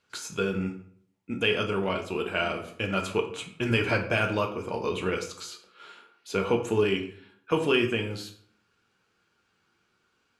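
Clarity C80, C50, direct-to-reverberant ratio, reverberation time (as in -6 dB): 13.5 dB, 10.0 dB, 3.0 dB, 0.55 s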